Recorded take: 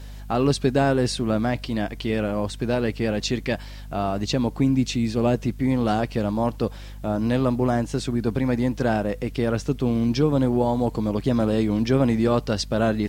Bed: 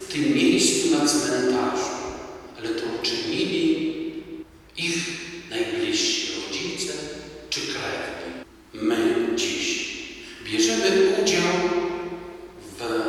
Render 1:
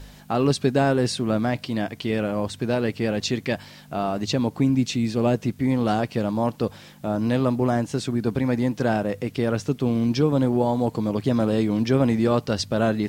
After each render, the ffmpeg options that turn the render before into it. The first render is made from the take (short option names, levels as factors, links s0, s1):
-af "bandreject=f=50:t=h:w=4,bandreject=f=100:t=h:w=4"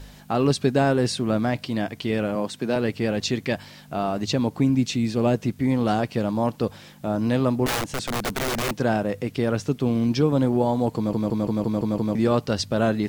-filter_complex "[0:a]asettb=1/sr,asplit=3[s0][s1][s2];[s0]atrim=end=2.354[s3];[s1]atrim=start=2.35:end=2.76,asetpts=PTS-STARTPTS,afade=t=in:d=0.004:c=qsin,afade=t=out:st=0.406:d=0.004:c=qsin,highpass=f=150:w=0.5412,highpass=f=150:w=1.3066[s4];[s2]atrim=start=2.756[s5];[s3][s4]acrossfade=d=0.004:c1=hsin:c2=qsin[s6];[s6][s5]acrossfade=d=0.004:c1=qsin:c2=hsin,asettb=1/sr,asplit=3[s7][s8][s9];[s7]atrim=end=7.664[s10];[s8]atrim=start=7.66:end=8.71,asetpts=PTS-STARTPTS,afade=t=in:d=0.004:c=qsin,afade=t=out:st=1.046:d=0.004:c=qsin,aeval=exprs='(mod(10.6*val(0)+1,2)-1)/10.6':c=same[s11];[s9]atrim=start=8.706[s12];[s10][s11]acrossfade=d=0.004:c1=hsin:c2=qsin[s13];[s13][s12]acrossfade=d=0.004:c1=qsin:c2=hsin,asplit=8[s14][s15][s16][s17][s18][s19][s20][s21];[s14]atrim=end=11.132[s22];[s15]atrim=start=10.958:end=11.132[s23];[s16]atrim=start=10.958:end=11.132[s24];[s17]atrim=start=10.958:end=11.132[s25];[s18]atrim=start=10.958:end=11.132[s26];[s19]atrim=start=10.958:end=11.132[s27];[s20]atrim=start=10.958:end=11.132[s28];[s21]atrim=start=12.148[s29];[s22][s23]acrossfade=d=0.004:c1=hsin:c2=hsin[s30];[s30][s24]acrossfade=d=0.004:c1=hsin:c2=hsin[s31];[s31][s25]acrossfade=d=0.004:c1=hsin:c2=hsin[s32];[s32][s26]acrossfade=d=0.004:c1=hsin:c2=hsin[s33];[s33][s27]acrossfade=d=0.004:c1=hsin:c2=hsin[s34];[s34][s28]acrossfade=d=0.004:c1=hsin:c2=hsin[s35];[s35][s29]acrossfade=d=0.004:c1=hsin:c2=hsin"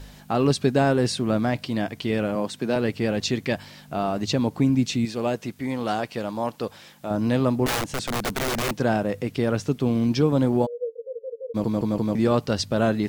-filter_complex "[0:a]asettb=1/sr,asplit=3[s0][s1][s2];[s0]atrim=end=5.054[s3];[s1]atrim=start=5.05:end=7.11,asetpts=PTS-STARTPTS,afade=t=in:d=0.004:c=qsin,afade=t=out:st=2.056:d=0.004:c=qsin,lowshelf=f=310:g=-11[s4];[s2]atrim=start=7.106[s5];[s3][s4]acrossfade=d=0.004:c1=hsin:c2=qsin[s6];[s6][s5]acrossfade=d=0.004:c1=qsin:c2=hsin,asplit=3[s7][s8][s9];[s7]afade=t=out:st=10.65:d=0.02[s10];[s8]asuperpass=centerf=490:order=8:qfactor=5.6,afade=t=in:st=10.65:d=0.02,afade=t=out:st=11.54:d=0.02[s11];[s9]afade=t=in:st=11.54:d=0.02[s12];[s10][s11][s12]amix=inputs=3:normalize=0"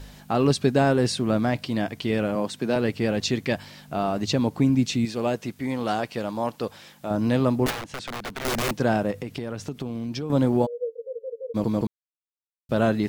-filter_complex "[0:a]asettb=1/sr,asplit=3[s0][s1][s2];[s0]atrim=end=7.704[s3];[s1]atrim=start=7.7:end=8.45,asetpts=PTS-STARTPTS,afade=t=in:d=0.004:c=qsin,afade=t=out:st=0.746:d=0.004:c=qsin,acrossover=split=410|900|4600[s4][s5][s6][s7];[s4]acompressor=threshold=0.01:ratio=3[s8];[s5]acompressor=threshold=0.00794:ratio=3[s9];[s6]acompressor=threshold=0.02:ratio=3[s10];[s7]acompressor=threshold=0.00355:ratio=3[s11];[s8][s9][s10][s11]amix=inputs=4:normalize=0[s12];[s2]atrim=start=8.446[s13];[s3][s12]acrossfade=d=0.004:c1=hsin:c2=qsin[s14];[s14][s13]acrossfade=d=0.004:c1=qsin:c2=hsin,asettb=1/sr,asplit=3[s15][s16][s17];[s15]atrim=end=9.114[s18];[s16]atrim=start=9.11:end=10.3,asetpts=PTS-STARTPTS,afade=t=in:d=0.004:c=qsin,afade=t=out:st=1.186:d=0.004:c=qsin,acompressor=threshold=0.0447:ratio=6:attack=3.2:release=140:knee=1:detection=peak[s19];[s17]atrim=start=10.296[s20];[s18][s19]acrossfade=d=0.004:c1=hsin:c2=qsin[s21];[s21][s20]acrossfade=d=0.004:c1=qsin:c2=hsin,asplit=3[s22][s23][s24];[s22]atrim=end=11.87,asetpts=PTS-STARTPTS,afade=t=out:st=11.866:d=0.004:c=hsin[s25];[s23]atrim=start=11.87:end=12.69,asetpts=PTS-STARTPTS,volume=0[s26];[s24]atrim=start=12.69,asetpts=PTS-STARTPTS,afade=t=in:d=0.004:c=hsin[s27];[s25][s26][s27]concat=n=3:v=0:a=1"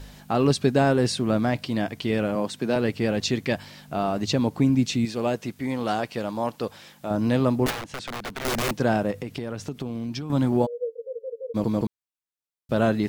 -filter_complex "[0:a]asettb=1/sr,asplit=3[s0][s1][s2];[s0]atrim=end=10.104[s3];[s1]atrim=start=10.1:end=10.52,asetpts=PTS-STARTPTS,afade=t=in:d=0.004:c=qsin,afade=t=out:st=0.416:d=0.004:c=qsin,equalizer=f=480:w=2.7:g=-11[s4];[s2]atrim=start=10.516[s5];[s3][s4]acrossfade=d=0.004:c1=hsin:c2=qsin[s6];[s6][s5]acrossfade=d=0.004:c1=qsin:c2=hsin"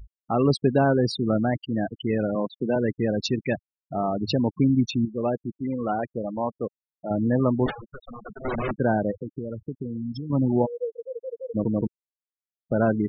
-af "afftfilt=real='re*gte(hypot(re,im),0.0794)':imag='im*gte(hypot(re,im),0.0794)':win_size=1024:overlap=0.75"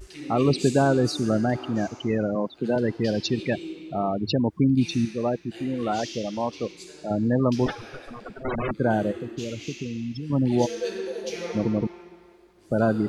-filter_complex "[1:a]volume=0.178[s0];[0:a][s0]amix=inputs=2:normalize=0"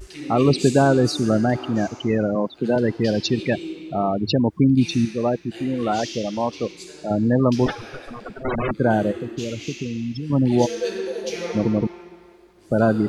-af "volume=1.58"